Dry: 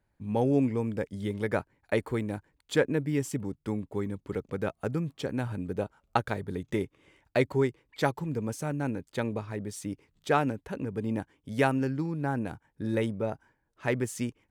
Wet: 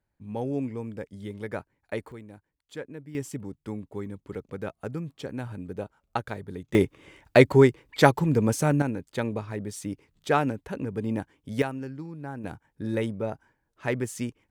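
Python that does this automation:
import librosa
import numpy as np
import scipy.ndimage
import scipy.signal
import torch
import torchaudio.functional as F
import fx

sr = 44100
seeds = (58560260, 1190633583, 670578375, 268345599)

y = fx.gain(x, sr, db=fx.steps((0.0, -5.0), (2.12, -13.0), (3.15, -3.0), (6.75, 9.5), (8.82, 2.0), (11.62, -7.0), (12.44, 0.5)))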